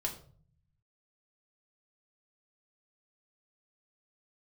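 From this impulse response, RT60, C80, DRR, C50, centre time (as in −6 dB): 0.50 s, 14.0 dB, 0.0 dB, 10.5 dB, 16 ms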